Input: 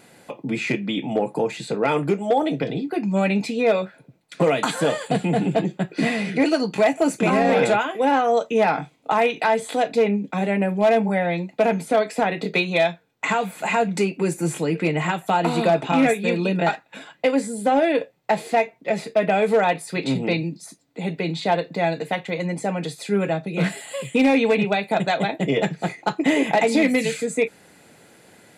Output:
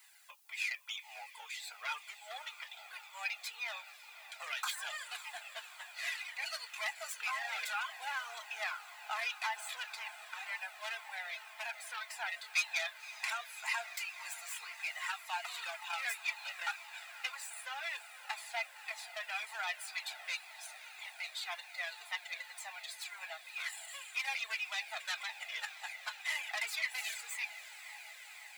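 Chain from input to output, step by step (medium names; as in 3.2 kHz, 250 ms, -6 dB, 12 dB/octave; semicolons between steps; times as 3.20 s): tracing distortion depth 0.072 ms; in parallel at -11 dB: hard clipper -26 dBFS, distortion -4 dB; on the sum: reverb removal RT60 0.55 s; added noise blue -58 dBFS; Bessel high-pass 1.6 kHz, order 8; on a send: echo that smears into a reverb 542 ms, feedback 79%, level -14 dB; on the sum: Shepard-style flanger falling 1.9 Hz; trim -5 dB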